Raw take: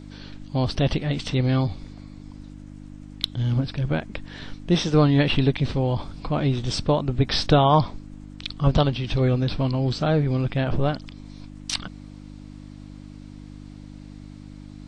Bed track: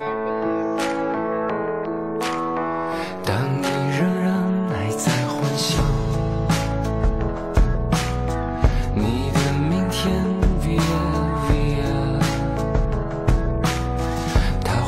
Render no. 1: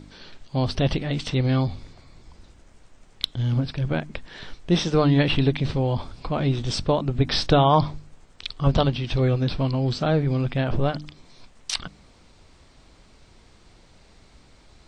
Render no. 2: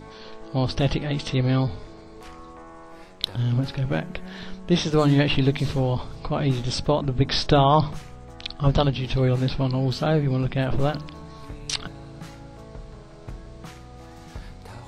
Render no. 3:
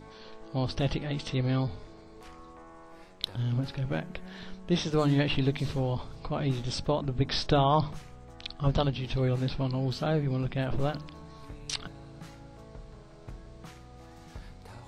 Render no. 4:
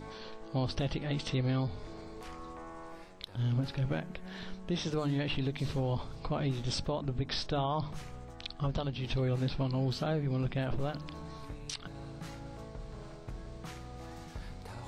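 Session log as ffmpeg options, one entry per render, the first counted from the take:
-af "bandreject=f=50:t=h:w=4,bandreject=f=100:t=h:w=4,bandreject=f=150:t=h:w=4,bandreject=f=200:t=h:w=4,bandreject=f=250:t=h:w=4,bandreject=f=300:t=h:w=4"
-filter_complex "[1:a]volume=0.1[s0];[0:a][s0]amix=inputs=2:normalize=0"
-af "volume=0.473"
-af "areverse,acompressor=mode=upward:threshold=0.0126:ratio=2.5,areverse,alimiter=limit=0.0668:level=0:latency=1:release=227"

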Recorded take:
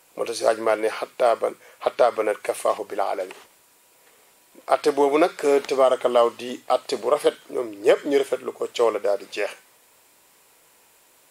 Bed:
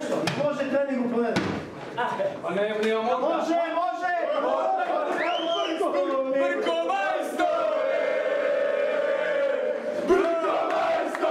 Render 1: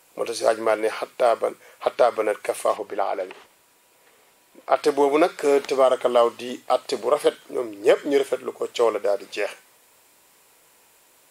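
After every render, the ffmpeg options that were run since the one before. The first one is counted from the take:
-filter_complex "[0:a]asettb=1/sr,asplit=3[s0][s1][s2];[s0]atrim=end=2.764[s3];[s1]atrim=start=2.76:end=4.76,asetpts=PTS-STARTPTS,afade=t=in:d=0.004:c=qsin,afade=t=out:st=1.996:d=0.004:c=qsin,acrossover=split=4300[s4][s5];[s5]acompressor=threshold=0.00126:ratio=4:attack=1:release=60[s6];[s4][s6]amix=inputs=2:normalize=0[s7];[s2]atrim=start=4.756[s8];[s3][s7]acrossfade=d=0.004:c1=hsin:c2=qsin[s9];[s9][s8]acrossfade=d=0.004:c1=qsin:c2=hsin"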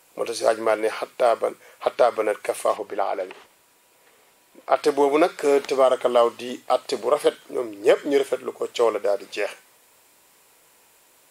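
-af anull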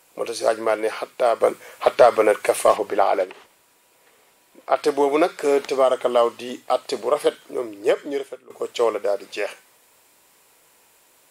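-filter_complex "[0:a]asplit=3[s0][s1][s2];[s0]afade=t=out:st=1.4:d=0.02[s3];[s1]acontrast=73,afade=t=in:st=1.4:d=0.02,afade=t=out:st=3.23:d=0.02[s4];[s2]afade=t=in:st=3.23:d=0.02[s5];[s3][s4][s5]amix=inputs=3:normalize=0,asplit=2[s6][s7];[s6]atrim=end=8.5,asetpts=PTS-STARTPTS,afade=t=out:st=7.71:d=0.79:silence=0.0891251[s8];[s7]atrim=start=8.5,asetpts=PTS-STARTPTS,afade=t=in:d=0.004:c=hsin:silence=0.0891251[s9];[s8][s9]concat=n=2:v=0:a=1"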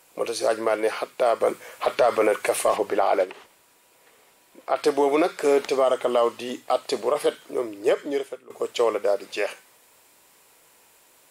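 -af "alimiter=limit=0.282:level=0:latency=1:release=23"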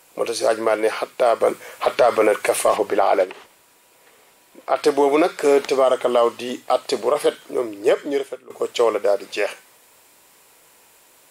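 -af "volume=1.58"

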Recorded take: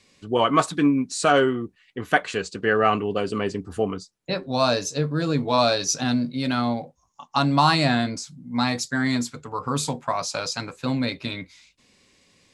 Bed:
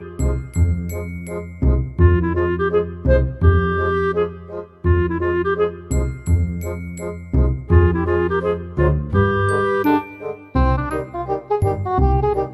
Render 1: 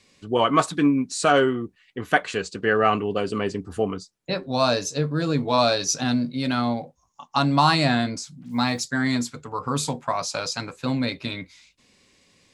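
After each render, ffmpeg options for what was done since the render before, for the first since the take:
-filter_complex "[0:a]asplit=3[s0][s1][s2];[s0]afade=t=out:st=8.41:d=0.02[s3];[s1]acrusher=bits=8:mix=0:aa=0.5,afade=t=in:st=8.41:d=0.02,afade=t=out:st=8.83:d=0.02[s4];[s2]afade=t=in:st=8.83:d=0.02[s5];[s3][s4][s5]amix=inputs=3:normalize=0"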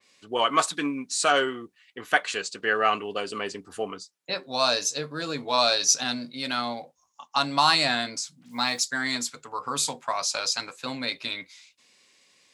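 -af "highpass=f=860:p=1,adynamicequalizer=threshold=0.02:dfrequency=2700:dqfactor=0.7:tfrequency=2700:tqfactor=0.7:attack=5:release=100:ratio=0.375:range=2:mode=boostabove:tftype=highshelf"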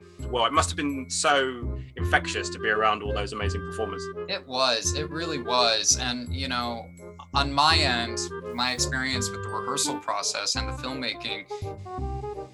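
-filter_complex "[1:a]volume=0.158[s0];[0:a][s0]amix=inputs=2:normalize=0"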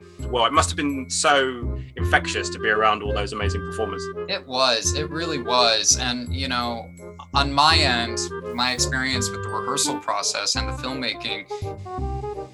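-af "volume=1.58,alimiter=limit=0.708:level=0:latency=1"

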